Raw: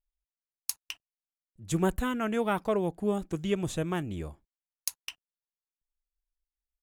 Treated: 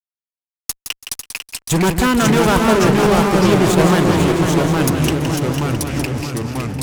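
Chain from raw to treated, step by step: high-pass 46 Hz 6 dB/octave; fuzz box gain 34 dB, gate -40 dBFS; on a send: multi-head delay 166 ms, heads first and third, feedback 49%, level -8 dB; on the sum: ever faster or slower copies 336 ms, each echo -2 st, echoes 3; trim +1 dB

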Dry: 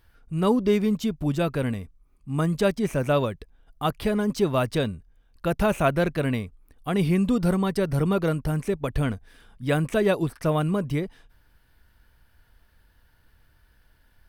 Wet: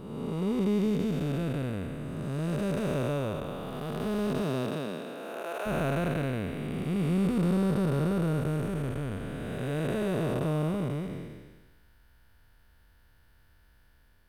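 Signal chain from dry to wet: spectral blur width 651 ms; 4.42–5.65 s: high-pass 100 Hz -> 440 Hz 24 dB/octave

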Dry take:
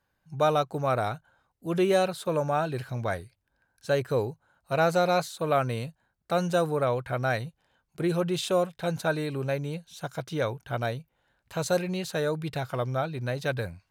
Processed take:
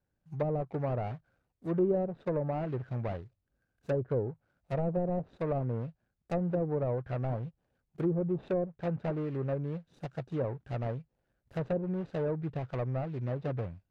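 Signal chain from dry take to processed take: median filter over 41 samples; low-pass that closes with the level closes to 540 Hz, closed at -23.5 dBFS; trim -2 dB

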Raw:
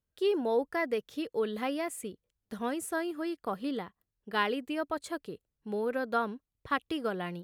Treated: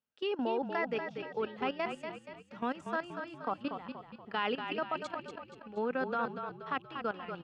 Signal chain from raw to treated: cabinet simulation 200–5800 Hz, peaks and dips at 240 Hz +6 dB, 340 Hz -6 dB, 860 Hz +6 dB, 1.3 kHz +6 dB, 2.7 kHz +8 dB, 4 kHz -4 dB; level held to a coarse grid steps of 16 dB; frequency-shifting echo 238 ms, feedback 47%, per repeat -31 Hz, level -7 dB

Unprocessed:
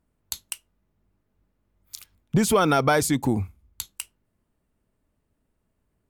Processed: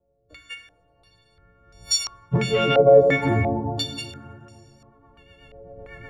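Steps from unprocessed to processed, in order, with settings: partials quantised in pitch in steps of 4 st; recorder AGC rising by 16 dB/s; 2.89–3.32 s: peaking EQ 1.3 kHz -8 dB 1.3 oct; peak limiter -10 dBFS, peak gain reduction 7 dB; ten-band graphic EQ 125 Hz +6 dB, 250 Hz -6 dB, 500 Hz +7 dB; saturation -11 dBFS, distortion -18 dB; rotary cabinet horn 0.85 Hz, later 8 Hz, at 3.53 s; plate-style reverb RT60 2.9 s, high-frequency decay 0.5×, DRR 4.5 dB; step-sequenced low-pass 2.9 Hz 560–5500 Hz

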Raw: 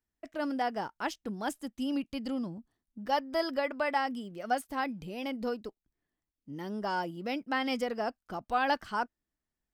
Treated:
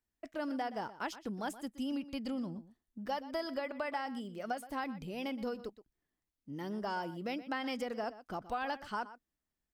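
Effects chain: compression, threshold -32 dBFS, peak gain reduction 9 dB; echo from a far wall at 21 m, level -15 dB; trim -1.5 dB

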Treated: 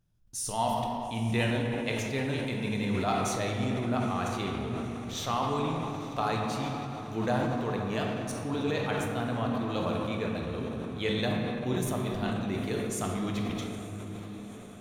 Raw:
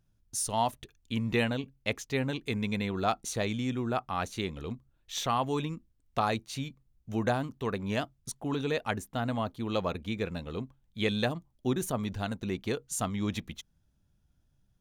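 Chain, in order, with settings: echo that smears into a reverb 908 ms, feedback 72%, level -16 dB; simulated room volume 150 m³, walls hard, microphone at 0.44 m; decay stretcher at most 21 dB/s; trim -3.5 dB

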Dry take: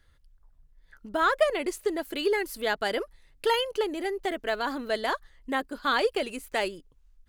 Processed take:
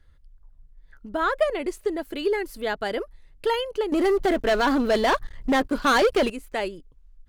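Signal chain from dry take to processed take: tilt EQ -1.5 dB/octave; 3.92–6.30 s: waveshaping leveller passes 3

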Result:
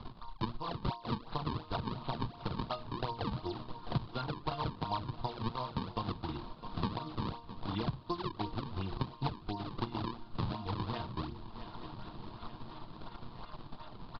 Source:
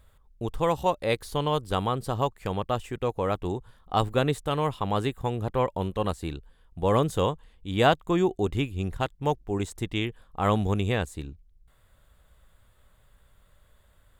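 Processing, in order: chord resonator A#3 sus4, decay 0.31 s; compression 6:1, threshold -55 dBFS, peak gain reduction 21.5 dB; hum notches 60/120/180/240/300 Hz; decimation with a swept rate 37×, swing 160% 2.8 Hz; distance through air 130 m; transient shaper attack +7 dB, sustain -4 dB; graphic EQ 125/500/1000/2000/4000 Hz +11/-6/+12/-10/+12 dB; on a send: shuffle delay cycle 879 ms, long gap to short 3:1, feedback 44%, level -20.5 dB; on the sum: resampled via 11.025 kHz; three bands compressed up and down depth 70%; trim +15.5 dB

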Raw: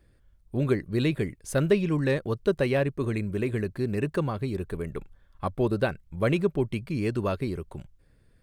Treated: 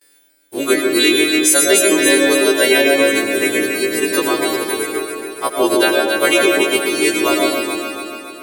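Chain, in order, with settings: partials quantised in pitch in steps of 2 st; tilt EQ +3.5 dB/octave; gate with hold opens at -49 dBFS; in parallel at -4 dB: bit crusher 7-bit; on the sum: resonant low shelf 220 Hz -11 dB, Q 3; on a send: echo whose repeats swap between lows and highs 141 ms, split 1.1 kHz, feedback 74%, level -3.5 dB; on the sum: algorithmic reverb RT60 1.1 s, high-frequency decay 0.45×, pre-delay 65 ms, DRR 3 dB; loudness maximiser +7 dB; trim -1 dB

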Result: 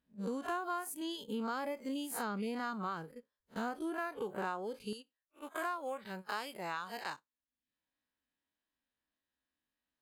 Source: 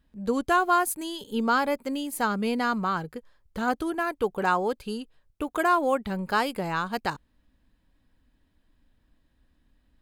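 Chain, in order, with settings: spectral blur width 96 ms; high-pass 190 Hz 6 dB/octave, from 4.93 s 940 Hz; gate -43 dBFS, range -10 dB; reverb removal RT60 0.57 s; compression 6:1, threshold -35 dBFS, peak gain reduction 14 dB

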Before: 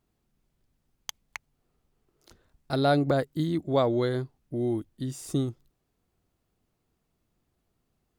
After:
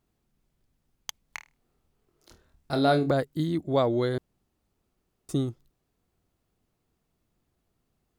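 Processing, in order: 1.22–3.09 s: flutter echo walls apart 4.4 m, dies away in 0.22 s; 4.18–5.29 s: room tone

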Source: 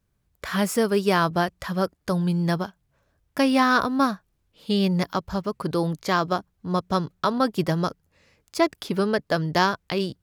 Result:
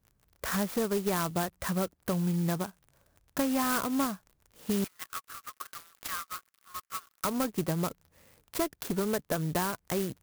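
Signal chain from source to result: low-pass 6.8 kHz 24 dB/octave; crackle 62 per s -43 dBFS; compression 3:1, threshold -28 dBFS, peak gain reduction 10.5 dB; one-sided clip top -25.5 dBFS; 4.84–7.25 s: Chebyshev high-pass 1.1 kHz, order 8; sampling jitter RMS 0.081 ms

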